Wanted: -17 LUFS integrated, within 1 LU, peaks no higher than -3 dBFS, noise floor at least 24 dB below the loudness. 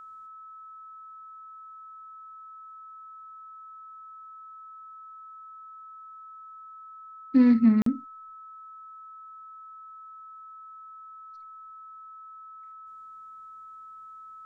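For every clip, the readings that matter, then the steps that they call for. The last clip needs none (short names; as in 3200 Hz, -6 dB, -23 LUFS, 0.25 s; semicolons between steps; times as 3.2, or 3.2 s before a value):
dropouts 1; longest dropout 43 ms; steady tone 1300 Hz; tone level -43 dBFS; loudness -22.0 LUFS; peak -10.5 dBFS; loudness target -17.0 LUFS
-> interpolate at 7.82, 43 ms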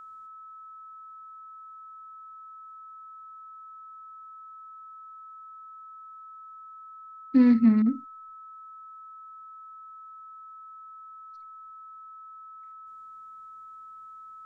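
dropouts 0; steady tone 1300 Hz; tone level -43 dBFS
-> notch 1300 Hz, Q 30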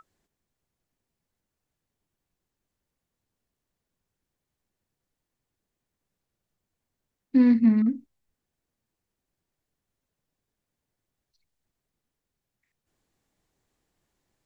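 steady tone none; loudness -21.5 LUFS; peak -10.5 dBFS; loudness target -17.0 LUFS
-> gain +4.5 dB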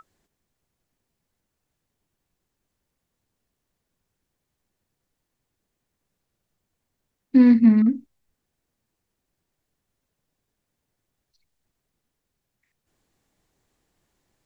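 loudness -17.0 LUFS; peak -6.0 dBFS; noise floor -81 dBFS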